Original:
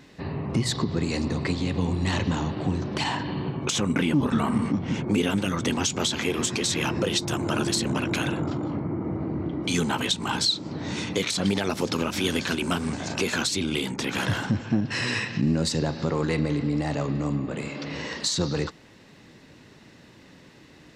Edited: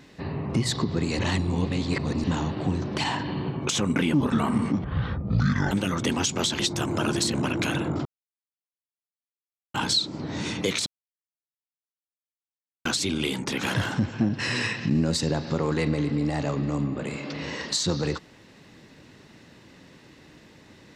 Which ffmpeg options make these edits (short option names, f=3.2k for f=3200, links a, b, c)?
-filter_complex "[0:a]asplit=10[a][b][c][d][e][f][g][h][i][j];[a]atrim=end=1.192[k];[b]atrim=start=1.188:end=2.242,asetpts=PTS-STARTPTS,areverse[l];[c]atrim=start=2.238:end=4.844[m];[d]atrim=start=4.84:end=5.32,asetpts=PTS-STARTPTS,asetrate=24255,aresample=44100,atrim=end_sample=38487,asetpts=PTS-STARTPTS[n];[e]atrim=start=5.316:end=6.202[o];[f]atrim=start=7.108:end=8.57,asetpts=PTS-STARTPTS,afade=t=out:st=1.458:d=0.004:c=hsin[p];[g]atrim=start=8.57:end=10.26,asetpts=PTS-STARTPTS,volume=0[q];[h]atrim=start=10.26:end=11.38,asetpts=PTS-STARTPTS,afade=t=in:d=0.004:c=hsin,afade=t=out:st=1.116:d=0.004:c=hsin[r];[i]atrim=start=11.38:end=13.37,asetpts=PTS-STARTPTS,volume=0[s];[j]atrim=start=13.37,asetpts=PTS-STARTPTS,afade=t=in:d=0.004:c=hsin[t];[k][l]acrossfade=d=0.004:c1=hsin:c2=hsin[u];[u][m]acrossfade=d=0.004:c1=hsin:c2=hsin[v];[v][n]acrossfade=d=0.004:c1=hsin:c2=hsin[w];[w][o]acrossfade=d=0.004:c1=hsin:c2=hsin[x];[p][q][r][s][t]concat=n=5:v=0:a=1[y];[x][y]acrossfade=d=0.004:c1=hsin:c2=hsin"